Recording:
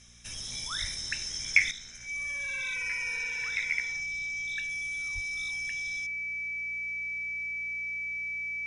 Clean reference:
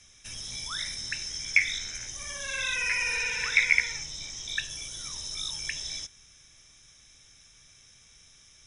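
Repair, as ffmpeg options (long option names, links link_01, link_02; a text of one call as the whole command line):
ffmpeg -i in.wav -filter_complex "[0:a]bandreject=frequency=59:width_type=h:width=4,bandreject=frequency=118:width_type=h:width=4,bandreject=frequency=177:width_type=h:width=4,bandreject=frequency=236:width_type=h:width=4,bandreject=frequency=2300:width=30,asplit=3[link_01][link_02][link_03];[link_01]afade=type=out:start_time=0.8:duration=0.02[link_04];[link_02]highpass=frequency=140:width=0.5412,highpass=frequency=140:width=1.3066,afade=type=in:start_time=0.8:duration=0.02,afade=type=out:start_time=0.92:duration=0.02[link_05];[link_03]afade=type=in:start_time=0.92:duration=0.02[link_06];[link_04][link_05][link_06]amix=inputs=3:normalize=0,asplit=3[link_07][link_08][link_09];[link_07]afade=type=out:start_time=5.14:duration=0.02[link_10];[link_08]highpass=frequency=140:width=0.5412,highpass=frequency=140:width=1.3066,afade=type=in:start_time=5.14:duration=0.02,afade=type=out:start_time=5.26:duration=0.02[link_11];[link_09]afade=type=in:start_time=5.26:duration=0.02[link_12];[link_10][link_11][link_12]amix=inputs=3:normalize=0,asetnsamples=nb_out_samples=441:pad=0,asendcmd='1.71 volume volume 9.5dB',volume=0dB" out.wav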